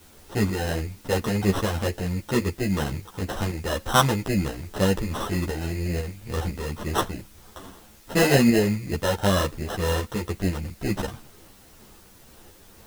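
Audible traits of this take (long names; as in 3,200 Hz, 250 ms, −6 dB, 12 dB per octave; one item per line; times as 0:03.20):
aliases and images of a low sample rate 2,300 Hz, jitter 0%
tremolo saw up 2 Hz, depth 45%
a quantiser's noise floor 10 bits, dither triangular
a shimmering, thickened sound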